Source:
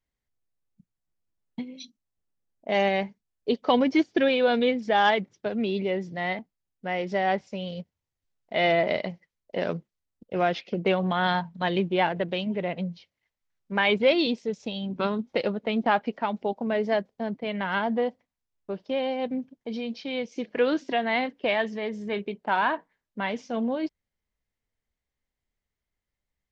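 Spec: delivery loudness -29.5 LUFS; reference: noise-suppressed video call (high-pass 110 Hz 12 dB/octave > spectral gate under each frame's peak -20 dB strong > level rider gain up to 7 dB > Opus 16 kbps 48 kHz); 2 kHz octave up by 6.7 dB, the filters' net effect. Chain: high-pass 110 Hz 12 dB/octave; peaking EQ 2 kHz +8 dB; spectral gate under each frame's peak -20 dB strong; level rider gain up to 7 dB; trim -7.5 dB; Opus 16 kbps 48 kHz

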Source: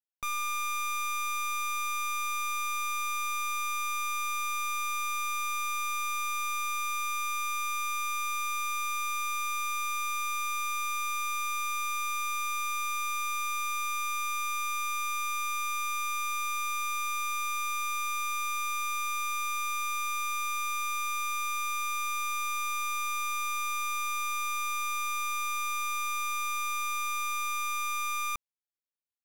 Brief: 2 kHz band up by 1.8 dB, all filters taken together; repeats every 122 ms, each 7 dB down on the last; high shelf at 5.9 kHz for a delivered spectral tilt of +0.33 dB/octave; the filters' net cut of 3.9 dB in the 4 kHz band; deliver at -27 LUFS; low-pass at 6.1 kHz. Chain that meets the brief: low-pass 6.1 kHz; peaking EQ 2 kHz +4 dB; peaking EQ 4 kHz -7.5 dB; treble shelf 5.9 kHz +8.5 dB; feedback delay 122 ms, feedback 45%, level -7 dB; trim +4 dB

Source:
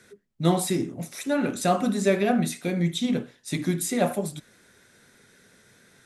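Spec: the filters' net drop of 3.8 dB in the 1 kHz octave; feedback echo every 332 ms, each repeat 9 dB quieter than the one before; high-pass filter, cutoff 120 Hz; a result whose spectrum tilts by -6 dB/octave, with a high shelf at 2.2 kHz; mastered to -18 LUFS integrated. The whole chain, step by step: high-pass 120 Hz; peaking EQ 1 kHz -5.5 dB; treble shelf 2.2 kHz -5.5 dB; feedback delay 332 ms, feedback 35%, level -9 dB; trim +8.5 dB

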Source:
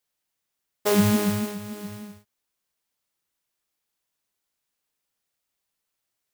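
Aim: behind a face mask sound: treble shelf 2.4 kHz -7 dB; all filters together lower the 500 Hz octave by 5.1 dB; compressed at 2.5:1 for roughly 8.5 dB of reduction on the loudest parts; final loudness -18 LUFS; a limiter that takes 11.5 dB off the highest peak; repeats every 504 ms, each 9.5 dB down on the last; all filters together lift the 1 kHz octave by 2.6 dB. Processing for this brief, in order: peaking EQ 500 Hz -8 dB; peaking EQ 1 kHz +6.5 dB; compression 2.5:1, threshold -28 dBFS; peak limiter -24 dBFS; treble shelf 2.4 kHz -7 dB; feedback delay 504 ms, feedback 33%, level -9.5 dB; trim +19 dB

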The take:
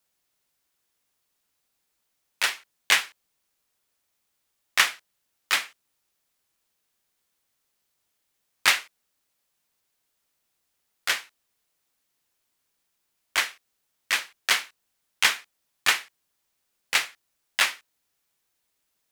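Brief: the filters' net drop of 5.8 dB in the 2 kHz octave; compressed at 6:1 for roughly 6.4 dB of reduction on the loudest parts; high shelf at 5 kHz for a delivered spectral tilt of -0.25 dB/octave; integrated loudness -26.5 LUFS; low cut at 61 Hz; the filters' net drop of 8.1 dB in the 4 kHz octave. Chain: high-pass 61 Hz; peaking EQ 2 kHz -4.5 dB; peaking EQ 4 kHz -8 dB; treble shelf 5 kHz -3 dB; compression 6:1, threshold -27 dBFS; trim +9 dB

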